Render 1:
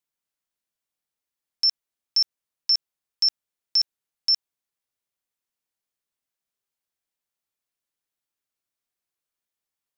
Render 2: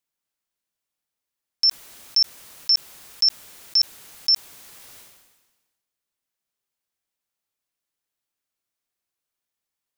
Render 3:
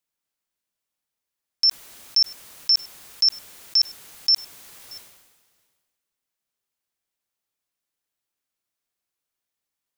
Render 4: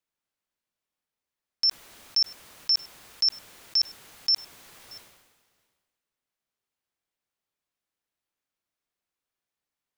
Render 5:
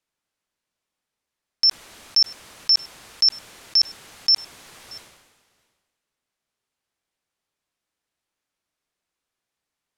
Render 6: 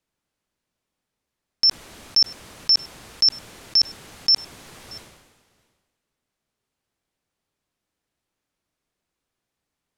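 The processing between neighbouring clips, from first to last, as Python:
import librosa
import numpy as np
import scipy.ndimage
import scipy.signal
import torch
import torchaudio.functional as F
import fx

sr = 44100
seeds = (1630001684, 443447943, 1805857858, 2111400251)

y1 = fx.sustainer(x, sr, db_per_s=46.0)
y1 = y1 * 10.0 ** (2.0 / 20.0)
y2 = y1 + 10.0 ** (-23.0 / 20.0) * np.pad(y1, (int(629 * sr / 1000.0), 0))[:len(y1)]
y3 = fx.high_shelf(y2, sr, hz=4800.0, db=-8.5)
y4 = scipy.signal.sosfilt(scipy.signal.butter(2, 11000.0, 'lowpass', fs=sr, output='sos'), y3)
y4 = y4 * 10.0 ** (6.0 / 20.0)
y5 = fx.low_shelf(y4, sr, hz=480.0, db=9.0)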